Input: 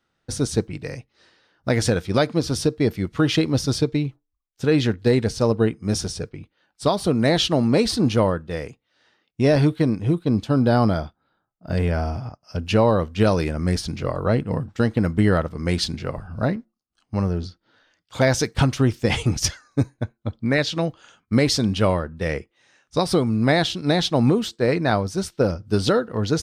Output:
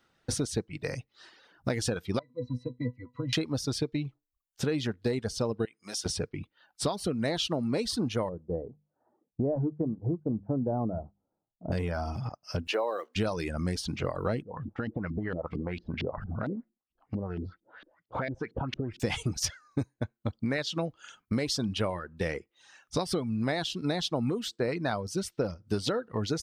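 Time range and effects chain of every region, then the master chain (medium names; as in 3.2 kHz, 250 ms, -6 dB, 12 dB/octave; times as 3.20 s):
2.19–3.33 s: peaking EQ 4.3 kHz -4.5 dB 0.45 oct + pitch-class resonator B, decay 0.2 s
5.65–6.06 s: high-pass 1.3 kHz 6 dB/octave + compression 3:1, threshold -35 dBFS
8.29–11.72 s: inverse Chebyshev low-pass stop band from 3.6 kHz, stop band 70 dB + hum notches 50/100/150/200 Hz + tape noise reduction on one side only decoder only
12.67–13.16 s: block-companded coder 7-bit + high-pass 380 Hz 24 dB/octave + treble shelf 4.3 kHz -8.5 dB
14.42–19.00 s: compression 5:1, threshold -31 dBFS + LFO low-pass saw up 4.4 Hz 240–3400 Hz
whole clip: reverb removal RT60 0.62 s; bass shelf 140 Hz -4 dB; compression 4:1, threshold -34 dBFS; trim +4.5 dB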